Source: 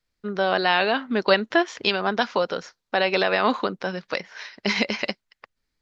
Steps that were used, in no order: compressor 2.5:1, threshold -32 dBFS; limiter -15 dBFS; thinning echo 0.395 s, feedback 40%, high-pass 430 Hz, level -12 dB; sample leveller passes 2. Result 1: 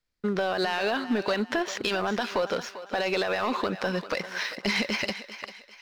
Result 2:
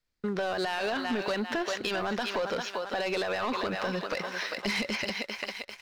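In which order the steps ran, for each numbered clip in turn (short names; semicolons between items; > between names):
limiter > compressor > sample leveller > thinning echo; thinning echo > limiter > sample leveller > compressor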